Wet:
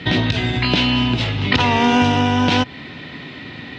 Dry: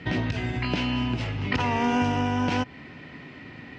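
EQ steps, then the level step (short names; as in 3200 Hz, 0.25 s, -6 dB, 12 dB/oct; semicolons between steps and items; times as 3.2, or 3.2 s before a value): HPF 56 Hz; bell 3700 Hz +12.5 dB 0.48 oct; +8.5 dB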